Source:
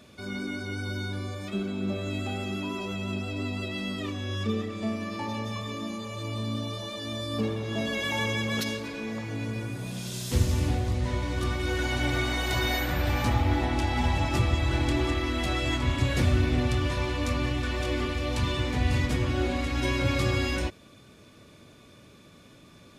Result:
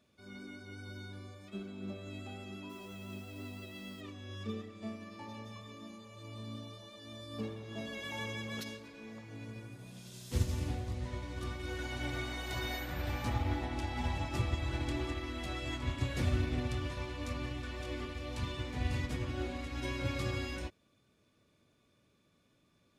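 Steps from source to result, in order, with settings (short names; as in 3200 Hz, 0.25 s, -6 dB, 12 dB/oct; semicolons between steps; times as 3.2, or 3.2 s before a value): 2.69–4 added noise white -51 dBFS; upward expander 1.5:1, over -42 dBFS; gain -7 dB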